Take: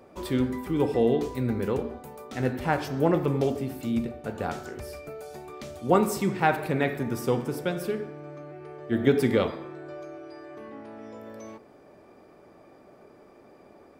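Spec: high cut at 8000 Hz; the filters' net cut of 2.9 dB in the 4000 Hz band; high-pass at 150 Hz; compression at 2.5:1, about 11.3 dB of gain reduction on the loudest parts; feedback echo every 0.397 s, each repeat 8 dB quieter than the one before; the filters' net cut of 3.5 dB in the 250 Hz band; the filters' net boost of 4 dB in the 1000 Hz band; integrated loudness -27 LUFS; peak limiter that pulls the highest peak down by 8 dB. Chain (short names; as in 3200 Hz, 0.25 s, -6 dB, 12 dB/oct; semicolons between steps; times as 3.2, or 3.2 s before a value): HPF 150 Hz; LPF 8000 Hz; bell 250 Hz -4 dB; bell 1000 Hz +6 dB; bell 4000 Hz -4 dB; compressor 2.5:1, threshold -31 dBFS; limiter -23 dBFS; feedback echo 0.397 s, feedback 40%, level -8 dB; gain +9 dB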